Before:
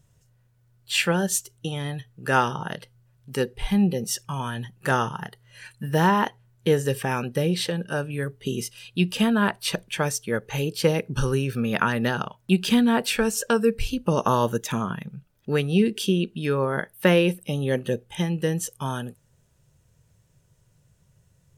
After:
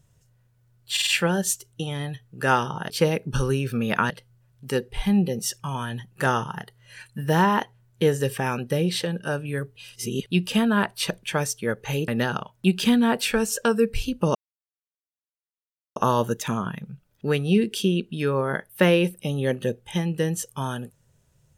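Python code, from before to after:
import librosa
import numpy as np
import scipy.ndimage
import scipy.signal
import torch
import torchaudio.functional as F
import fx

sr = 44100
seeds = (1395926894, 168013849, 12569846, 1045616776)

y = fx.edit(x, sr, fx.stutter(start_s=0.92, slice_s=0.05, count=4),
    fx.reverse_span(start_s=8.41, length_s=0.5),
    fx.move(start_s=10.73, length_s=1.2, to_s=2.75),
    fx.insert_silence(at_s=14.2, length_s=1.61), tone=tone)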